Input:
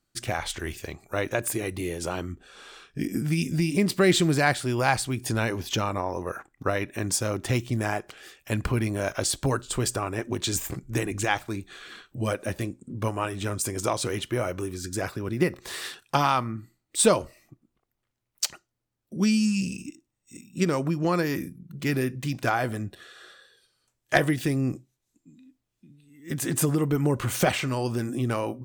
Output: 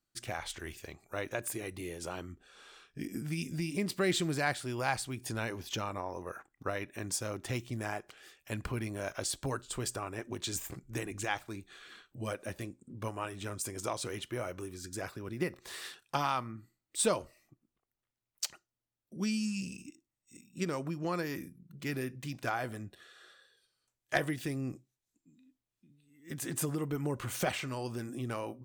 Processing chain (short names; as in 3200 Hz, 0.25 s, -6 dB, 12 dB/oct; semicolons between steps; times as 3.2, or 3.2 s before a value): low shelf 430 Hz -3 dB; gain -8.5 dB